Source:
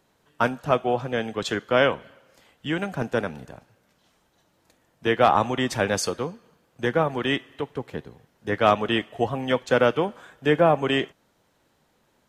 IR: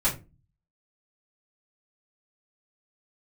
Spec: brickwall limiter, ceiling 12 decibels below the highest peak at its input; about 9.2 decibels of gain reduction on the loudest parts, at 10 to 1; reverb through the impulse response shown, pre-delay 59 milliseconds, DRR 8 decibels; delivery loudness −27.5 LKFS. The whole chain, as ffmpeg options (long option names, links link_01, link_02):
-filter_complex "[0:a]acompressor=threshold=-22dB:ratio=10,alimiter=limit=-21.5dB:level=0:latency=1,asplit=2[link_01][link_02];[1:a]atrim=start_sample=2205,adelay=59[link_03];[link_02][link_03]afir=irnorm=-1:irlink=0,volume=-18.5dB[link_04];[link_01][link_04]amix=inputs=2:normalize=0,volume=5.5dB"